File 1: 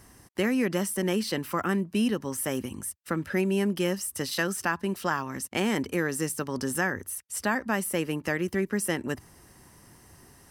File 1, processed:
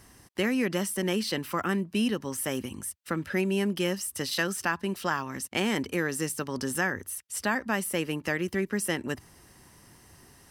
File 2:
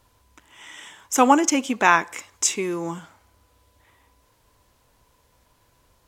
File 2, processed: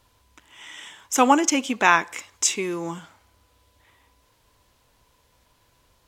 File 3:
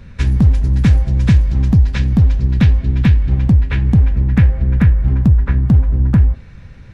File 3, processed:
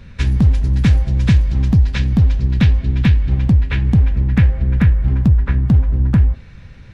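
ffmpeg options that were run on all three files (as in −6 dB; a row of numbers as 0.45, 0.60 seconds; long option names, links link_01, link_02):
-af "equalizer=frequency=3400:width=0.85:gain=4,volume=-1.5dB"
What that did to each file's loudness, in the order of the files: −1.0, −0.5, −1.5 LU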